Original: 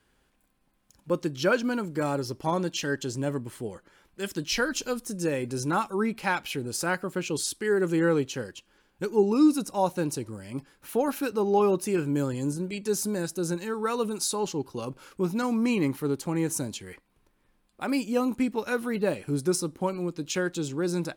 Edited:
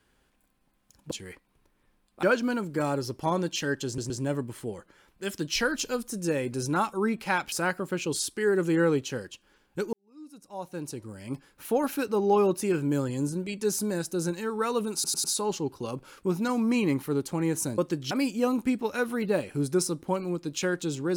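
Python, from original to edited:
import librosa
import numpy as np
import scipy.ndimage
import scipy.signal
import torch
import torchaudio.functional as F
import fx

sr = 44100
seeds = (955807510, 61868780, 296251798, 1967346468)

y = fx.edit(x, sr, fx.swap(start_s=1.11, length_s=0.33, other_s=16.72, other_length_s=1.12),
    fx.stutter(start_s=3.07, slice_s=0.12, count=3),
    fx.cut(start_s=6.49, length_s=0.27),
    fx.fade_in_span(start_s=9.17, length_s=1.36, curve='qua'),
    fx.stutter(start_s=14.18, slice_s=0.1, count=4), tone=tone)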